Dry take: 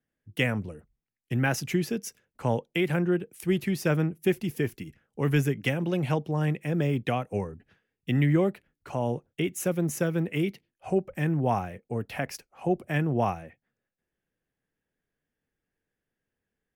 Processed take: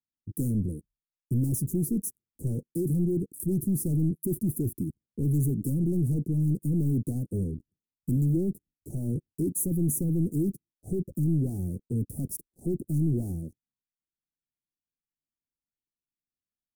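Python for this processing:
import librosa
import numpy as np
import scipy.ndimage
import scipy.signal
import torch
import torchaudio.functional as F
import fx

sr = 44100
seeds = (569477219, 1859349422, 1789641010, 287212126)

y = fx.leveller(x, sr, passes=5)
y = scipy.signal.sosfilt(scipy.signal.ellip(3, 1.0, 60, [320.0, 9200.0], 'bandstop', fs=sr, output='sos'), y)
y = F.gain(torch.from_numpy(y), -7.0).numpy()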